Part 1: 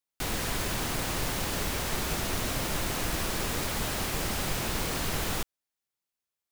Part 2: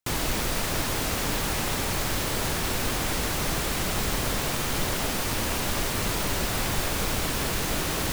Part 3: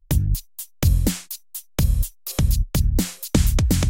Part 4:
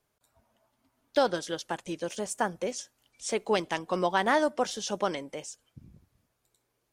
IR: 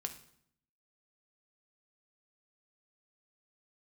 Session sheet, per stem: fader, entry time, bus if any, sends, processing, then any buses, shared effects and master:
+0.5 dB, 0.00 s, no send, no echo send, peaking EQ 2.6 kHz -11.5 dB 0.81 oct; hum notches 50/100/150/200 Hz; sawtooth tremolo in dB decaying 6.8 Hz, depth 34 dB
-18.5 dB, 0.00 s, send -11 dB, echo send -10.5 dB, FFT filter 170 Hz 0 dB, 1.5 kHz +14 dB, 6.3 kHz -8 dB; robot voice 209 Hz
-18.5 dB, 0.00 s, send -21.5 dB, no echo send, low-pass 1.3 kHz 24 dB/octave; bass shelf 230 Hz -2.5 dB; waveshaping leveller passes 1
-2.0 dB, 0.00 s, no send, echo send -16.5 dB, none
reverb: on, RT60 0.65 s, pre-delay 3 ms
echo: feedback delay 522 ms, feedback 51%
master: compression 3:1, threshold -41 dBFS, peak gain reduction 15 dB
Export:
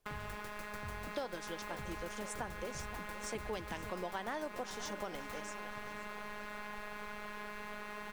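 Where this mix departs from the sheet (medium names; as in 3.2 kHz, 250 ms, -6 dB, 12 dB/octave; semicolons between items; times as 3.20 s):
stem 1 +0.5 dB -> -7.0 dB; stem 3 -18.5 dB -> -24.5 dB; reverb return +9.5 dB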